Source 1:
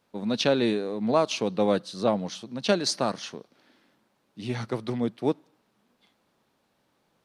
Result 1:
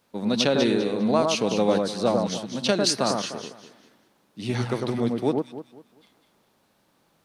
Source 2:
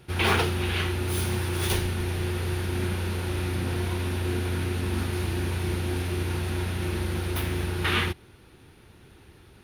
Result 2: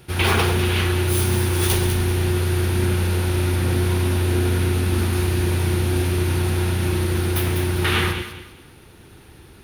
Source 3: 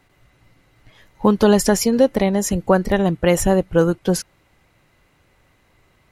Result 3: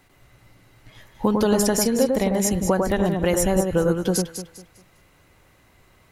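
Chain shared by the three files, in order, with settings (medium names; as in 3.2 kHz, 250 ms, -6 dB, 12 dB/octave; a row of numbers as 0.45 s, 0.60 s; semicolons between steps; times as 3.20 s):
treble shelf 6.2 kHz +6.5 dB; compression 2:1, threshold -22 dBFS; on a send: echo whose repeats swap between lows and highs 100 ms, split 1.6 kHz, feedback 54%, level -3 dB; on the sum: peak normalisation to -6 dBFS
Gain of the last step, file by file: +3.0 dB, +4.5 dB, +0.5 dB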